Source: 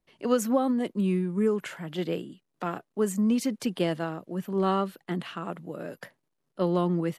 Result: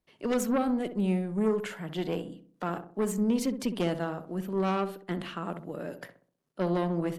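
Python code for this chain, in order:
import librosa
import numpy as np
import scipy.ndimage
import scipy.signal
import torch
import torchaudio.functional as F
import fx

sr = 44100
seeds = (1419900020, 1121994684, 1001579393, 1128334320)

y = fx.cheby_harmonics(x, sr, harmonics=(4, 5), levels_db=(-12, -14), full_scale_db=-12.0)
y = fx.echo_filtered(y, sr, ms=64, feedback_pct=48, hz=1000.0, wet_db=-8.5)
y = y * librosa.db_to_amplitude(-7.0)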